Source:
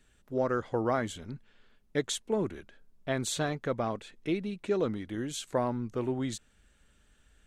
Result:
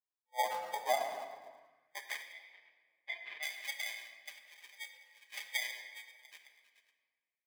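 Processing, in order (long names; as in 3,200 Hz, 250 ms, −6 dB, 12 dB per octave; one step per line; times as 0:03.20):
spectral dynamics exaggerated over time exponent 2
on a send: echo through a band-pass that steps 108 ms, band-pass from 1,200 Hz, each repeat 0.7 octaves, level −9 dB
on the sum: downward compressor 5 to 1, threshold −41 dBFS, peak gain reduction 13.5 dB
brick-wall band-pass 500–7,100 Hz
flanger 0.7 Hz, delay 2.3 ms, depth 5.4 ms, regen −40%
in parallel at −8 dB: slack as between gear wheels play −58 dBFS
on the sum: decimation without filtering 32×
0:02.32–0:03.43: high-frequency loss of the air 380 metres
rectangular room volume 2,400 cubic metres, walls mixed, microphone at 1.3 metres
high-pass filter sweep 820 Hz → 2,300 Hz, 0:01.49–0:02.34
level +10 dB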